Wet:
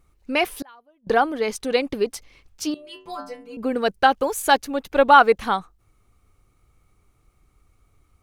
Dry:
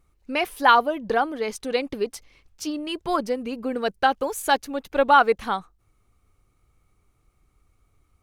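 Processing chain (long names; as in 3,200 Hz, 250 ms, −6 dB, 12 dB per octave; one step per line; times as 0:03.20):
0:00.44–0:01.07: gate with flip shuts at −24 dBFS, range −36 dB
0:02.74–0:03.57: stiff-string resonator 88 Hz, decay 0.68 s, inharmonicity 0.008
level +3.5 dB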